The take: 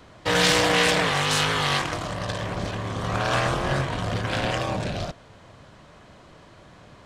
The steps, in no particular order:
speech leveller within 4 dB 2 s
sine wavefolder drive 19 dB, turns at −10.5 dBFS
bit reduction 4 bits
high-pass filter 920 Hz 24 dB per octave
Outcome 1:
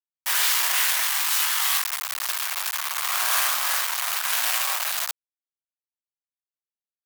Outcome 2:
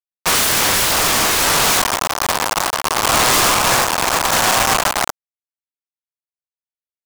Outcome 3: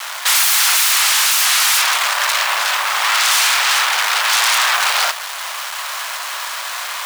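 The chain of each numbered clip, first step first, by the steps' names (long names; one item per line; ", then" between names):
speech leveller, then bit reduction, then sine wavefolder, then high-pass filter
bit reduction, then high-pass filter, then sine wavefolder, then speech leveller
sine wavefolder, then speech leveller, then bit reduction, then high-pass filter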